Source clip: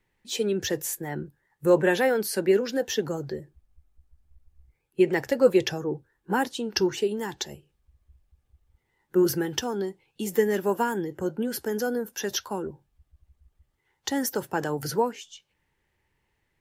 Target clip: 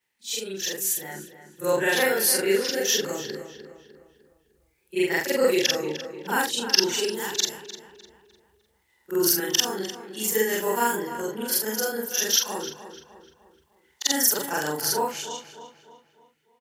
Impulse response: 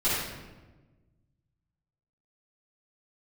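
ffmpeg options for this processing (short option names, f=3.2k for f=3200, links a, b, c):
-filter_complex "[0:a]afftfilt=real='re':imag='-im':win_size=4096:overlap=0.75,highshelf=f=7k:g=-9.5,dynaudnorm=f=340:g=9:m=7dB,highpass=f=250:p=1,asplit=2[a][b];[b]adelay=302,lowpass=f=3.3k:p=1,volume=-11dB,asplit=2[c][d];[d]adelay=302,lowpass=f=3.3k:p=1,volume=0.45,asplit=2[e][f];[f]adelay=302,lowpass=f=3.3k:p=1,volume=0.45,asplit=2[g][h];[h]adelay=302,lowpass=f=3.3k:p=1,volume=0.45,asplit=2[i][j];[j]adelay=302,lowpass=f=3.3k:p=1,volume=0.45[k];[a][c][e][g][i][k]amix=inputs=6:normalize=0,crystalizer=i=7.5:c=0,volume=-4dB"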